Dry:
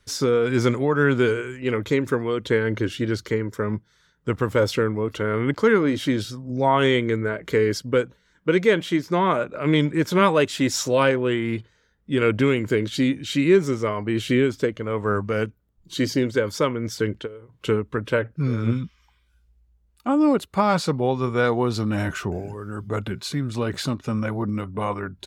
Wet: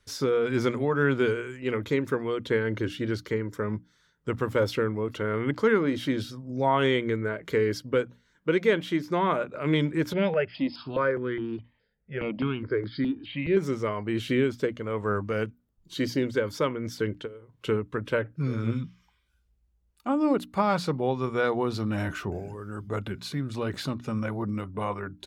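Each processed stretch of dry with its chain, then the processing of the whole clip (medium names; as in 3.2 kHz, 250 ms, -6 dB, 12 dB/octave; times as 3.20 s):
10.13–13.57 s: brick-wall FIR low-pass 5.2 kHz + peaking EQ 3.9 kHz -9.5 dB 0.29 oct + stepped phaser 4.8 Hz 300–2700 Hz
whole clip: hum notches 60/120/180/240/300 Hz; dynamic bell 7.5 kHz, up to -6 dB, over -48 dBFS, Q 1.3; trim -4.5 dB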